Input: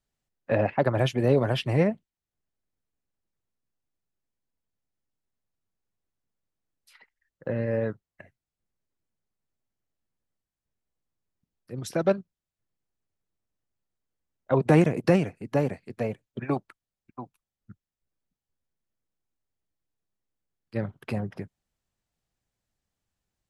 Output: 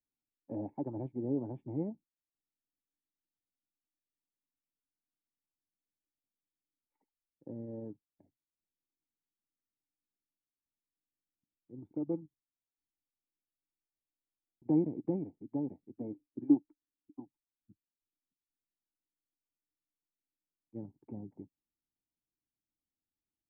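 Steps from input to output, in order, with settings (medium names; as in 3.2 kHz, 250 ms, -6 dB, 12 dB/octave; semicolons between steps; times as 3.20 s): 11.73 s: tape stop 2.89 s; 15.98–17.20 s: peaking EQ 300 Hz +12 dB 0.41 oct; cascade formant filter u; trim -3.5 dB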